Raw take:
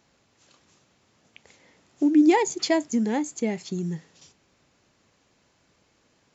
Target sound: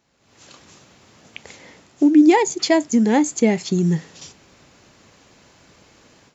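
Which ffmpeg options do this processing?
ffmpeg -i in.wav -af "dynaudnorm=framelen=190:gausssize=3:maxgain=16.5dB,volume=-3dB" out.wav

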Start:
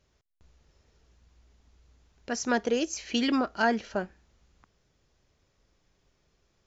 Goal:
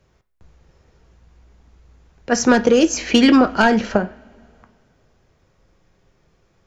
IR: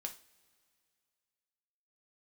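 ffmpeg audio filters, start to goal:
-filter_complex "[0:a]asplit=3[link_01][link_02][link_03];[link_01]afade=type=out:start_time=2.31:duration=0.02[link_04];[link_02]aeval=exprs='0.266*sin(PI/2*1.58*val(0)/0.266)':channel_layout=same,afade=type=in:start_time=2.31:duration=0.02,afade=type=out:start_time=3.96:duration=0.02[link_05];[link_03]afade=type=in:start_time=3.96:duration=0.02[link_06];[link_04][link_05][link_06]amix=inputs=3:normalize=0,acrossover=split=220|3000[link_07][link_08][link_09];[link_08]acompressor=threshold=-23dB:ratio=6[link_10];[link_07][link_10][link_09]amix=inputs=3:normalize=0,asplit=2[link_11][link_12];[1:a]atrim=start_sample=2205,lowpass=2500[link_13];[link_12][link_13]afir=irnorm=-1:irlink=0,volume=3.5dB[link_14];[link_11][link_14]amix=inputs=2:normalize=0,volume=5dB"

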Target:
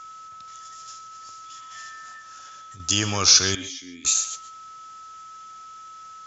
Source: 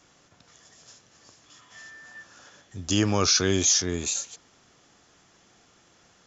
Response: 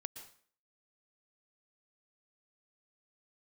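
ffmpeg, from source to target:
-filter_complex "[0:a]equalizer=frequency=460:width_type=o:width=2.8:gain=-10,aeval=exprs='val(0)+0.00562*sin(2*PI*1300*n/s)':channel_layout=same,asettb=1/sr,asplit=3[link_01][link_02][link_03];[link_01]atrim=end=2.134[link_04];[link_02]atrim=start=2.13:end=2.8,asetpts=PTS-STARTPTS,afade=type=in:duration=0.004:curve=qsin,afade=type=out:start_time=0.666:duration=0.004:curve=qsin,acompressor=threshold=-45dB:ratio=6[link_05];[link_03]atrim=start=2.796[link_06];[link_04][link_05]acrossfade=duration=0.004:curve1=hsin:curve2=qsin[link_07];[link_07][link_06]acrossfade=duration=0.004:curve1=qsin:curve2=hsin,asettb=1/sr,asplit=3[link_08][link_09][link_10];[link_08]atrim=end=3.554[link_11];[link_09]atrim=start=3.55:end=4.05,asetpts=PTS-STARTPTS,afade=type=in:duration=0.004:curve=qsin,afade=type=out:start_time=0.496:duration=0.004:curve=qsin,asplit=3[link_12][link_13][link_14];[link_12]bandpass=frequency=270:width_type=q:width=8,volume=0dB[link_15];[link_13]bandpass=frequency=2290:width_type=q:width=8,volume=-6dB[link_16];[link_14]bandpass=frequency=3010:width_type=q:width=8,volume=-9dB[link_17];[link_15][link_16][link_17]amix=inputs=3:normalize=0[link_18];[link_10]atrim=start=4.046[link_19];[link_11][link_18]acrossfade=duration=0.004:curve1=hsin:curve2=qsin[link_20];[link_20][link_19]acrossfade=duration=0.004:curve1=qsin:curve2=hsin,asplit=2[link_21][link_22];[link_22]bass=frequency=250:gain=-13,treble=frequency=4000:gain=3[link_23];[1:a]atrim=start_sample=2205,afade=type=out:start_time=0.2:duration=0.01,atrim=end_sample=9261[link_24];[link_23][link_24]afir=irnorm=-1:irlink=0,volume=8.5dB[link_25];[link_21][link_25]amix=inputs=2:normalize=0,volume=-2.5dB"

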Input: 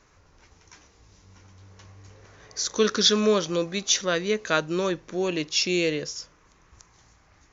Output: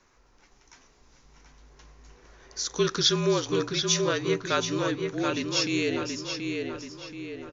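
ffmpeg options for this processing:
ffmpeg -i in.wav -filter_complex "[0:a]equalizer=frequency=150:width=2.3:gain=-4,afreqshift=-44,asplit=2[link_01][link_02];[link_02]adelay=729,lowpass=frequency=3700:poles=1,volume=-4dB,asplit=2[link_03][link_04];[link_04]adelay=729,lowpass=frequency=3700:poles=1,volume=0.49,asplit=2[link_05][link_06];[link_06]adelay=729,lowpass=frequency=3700:poles=1,volume=0.49,asplit=2[link_07][link_08];[link_08]adelay=729,lowpass=frequency=3700:poles=1,volume=0.49,asplit=2[link_09][link_10];[link_10]adelay=729,lowpass=frequency=3700:poles=1,volume=0.49,asplit=2[link_11][link_12];[link_12]adelay=729,lowpass=frequency=3700:poles=1,volume=0.49[link_13];[link_03][link_05][link_07][link_09][link_11][link_13]amix=inputs=6:normalize=0[link_14];[link_01][link_14]amix=inputs=2:normalize=0,volume=-3dB" out.wav

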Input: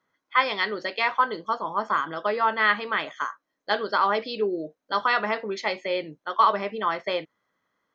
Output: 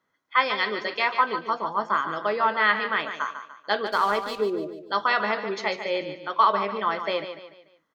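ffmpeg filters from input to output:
ffmpeg -i in.wav -filter_complex "[0:a]asplit=3[link_01][link_02][link_03];[link_01]afade=type=out:start_time=3.85:duration=0.02[link_04];[link_02]aeval=exprs='sgn(val(0))*max(abs(val(0))-0.0106,0)':channel_layout=same,afade=type=in:start_time=3.85:duration=0.02,afade=type=out:start_time=4.4:duration=0.02[link_05];[link_03]afade=type=in:start_time=4.4:duration=0.02[link_06];[link_04][link_05][link_06]amix=inputs=3:normalize=0,aecho=1:1:146|292|438|584:0.335|0.134|0.0536|0.0214" out.wav

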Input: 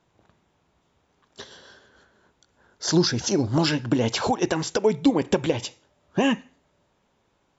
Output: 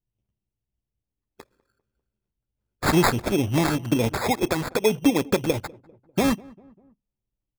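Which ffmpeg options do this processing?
ffmpeg -i in.wav -filter_complex "[0:a]asettb=1/sr,asplit=3[link_01][link_02][link_03];[link_01]atrim=end=1.424[link_04];[link_02]atrim=start=1.42:end=3.17,asetpts=PTS-STARTPTS,afade=type=in:duration=0.004:curve=qsin,afade=type=out:start_time=1.746:duration=0.004:curve=qsin,aemphasis=mode=production:type=50kf[link_05];[link_03]atrim=start=3.166[link_06];[link_04][link_05]acrossfade=duration=0.004:curve1=hsin:curve2=qsin[link_07];[link_07][link_06]acrossfade=duration=0.004:curve1=qsin:curve2=hsin,anlmdn=10,equalizer=frequency=95:width=4.9:gain=3,acrusher=samples=15:mix=1:aa=0.000001,asplit=2[link_08][link_09];[link_09]adelay=198,lowpass=frequency=1100:poles=1,volume=-23dB,asplit=2[link_10][link_11];[link_11]adelay=198,lowpass=frequency=1100:poles=1,volume=0.51,asplit=2[link_12][link_13];[link_13]adelay=198,lowpass=frequency=1100:poles=1,volume=0.51[link_14];[link_08][link_10][link_12][link_14]amix=inputs=4:normalize=0" out.wav

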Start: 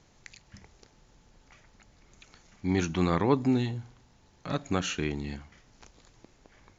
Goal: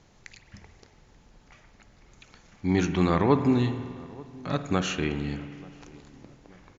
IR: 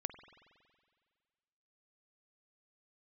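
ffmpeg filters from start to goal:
-filter_complex "[0:a]highshelf=frequency=6000:gain=-6,asplit=2[link_01][link_02];[link_02]adelay=885,lowpass=frequency=1200:poles=1,volume=-22dB,asplit=2[link_03][link_04];[link_04]adelay=885,lowpass=frequency=1200:poles=1,volume=0.51,asplit=2[link_05][link_06];[link_06]adelay=885,lowpass=frequency=1200:poles=1,volume=0.51,asplit=2[link_07][link_08];[link_08]adelay=885,lowpass=frequency=1200:poles=1,volume=0.51[link_09];[link_01][link_03][link_05][link_07][link_09]amix=inputs=5:normalize=0[link_10];[1:a]atrim=start_sample=2205,asetrate=41895,aresample=44100[link_11];[link_10][link_11]afir=irnorm=-1:irlink=0,volume=4.5dB"

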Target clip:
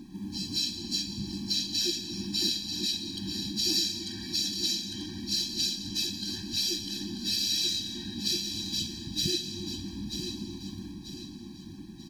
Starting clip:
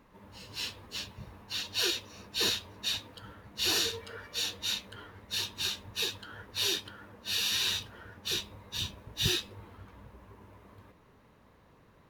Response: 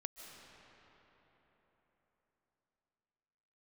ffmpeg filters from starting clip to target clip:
-filter_complex "[0:a]acompressor=threshold=-45dB:ratio=3,firequalizer=gain_entry='entry(110,0);entry(190,13);entry(570,13);entry(930,-12);entry(4400,13);entry(13000,0)':delay=0.05:min_phase=1,aecho=1:1:938|1876|2814|3752:0.398|0.151|0.0575|0.0218,asplit=2[link_01][link_02];[1:a]atrim=start_sample=2205,asetrate=57330,aresample=44100,highshelf=frequency=4700:gain=7.5[link_03];[link_02][link_03]afir=irnorm=-1:irlink=0,volume=6dB[link_04];[link_01][link_04]amix=inputs=2:normalize=0,afftfilt=real='re*eq(mod(floor(b*sr/1024/380),2),0)':imag='im*eq(mod(floor(b*sr/1024/380),2),0)':win_size=1024:overlap=0.75,volume=1.5dB"

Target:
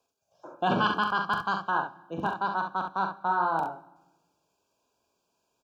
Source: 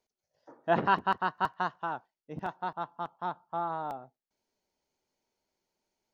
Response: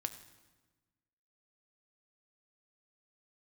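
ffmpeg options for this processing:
-filter_complex "[0:a]highpass=42,equalizer=frequency=990:width=0.58:gain=3,acrossover=split=190|1600[link_01][link_02][link_03];[link_02]alimiter=limit=-24dB:level=0:latency=1[link_04];[link_01][link_04][link_03]amix=inputs=3:normalize=0,asuperstop=centerf=1800:order=20:qfactor=3.1,aecho=1:1:46|73:0.447|0.447,asplit=2[link_05][link_06];[1:a]atrim=start_sample=2205[link_07];[link_06][link_07]afir=irnorm=-1:irlink=0,volume=-1dB[link_08];[link_05][link_08]amix=inputs=2:normalize=0,asetrate=48000,aresample=44100"

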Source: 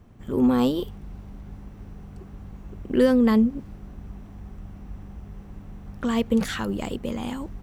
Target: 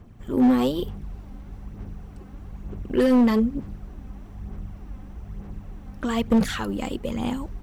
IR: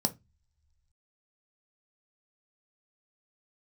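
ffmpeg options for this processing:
-af "aphaser=in_gain=1:out_gain=1:delay=3.9:decay=0.42:speed=1.1:type=sinusoidal,asoftclip=type=hard:threshold=-13.5dB"

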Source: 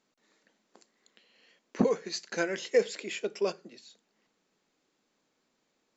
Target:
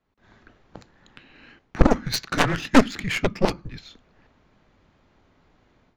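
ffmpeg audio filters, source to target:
ffmpeg -i in.wav -af "adynamicsmooth=sensitivity=7:basefreq=2500,afreqshift=-220,aeval=exprs='0.224*(cos(1*acos(clip(val(0)/0.224,-1,1)))-cos(1*PI/2))+0.0631*(cos(4*acos(clip(val(0)/0.224,-1,1)))-cos(4*PI/2))+0.0794*(cos(7*acos(clip(val(0)/0.224,-1,1)))-cos(7*PI/2))':channel_layout=same,dynaudnorm=framelen=140:gausssize=3:maxgain=16dB,volume=-1dB" out.wav

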